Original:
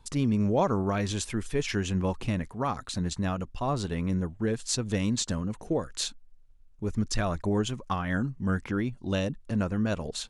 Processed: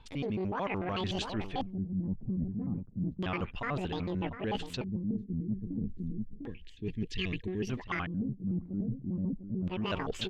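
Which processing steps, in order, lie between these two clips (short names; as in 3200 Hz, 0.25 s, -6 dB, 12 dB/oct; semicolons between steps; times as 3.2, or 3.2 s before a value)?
trilling pitch shifter +10.5 st, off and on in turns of 74 ms; outdoor echo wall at 120 m, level -14 dB; in parallel at -10 dB: soft clip -27 dBFS, distortion -11 dB; on the sum: spectral gain 5.15–7.69, 490–1600 Hz -21 dB; LFO low-pass square 0.31 Hz 210–3000 Hz; reverse; compressor 10:1, threshold -36 dBFS, peak gain reduction 19.5 dB; reverse; gain +5 dB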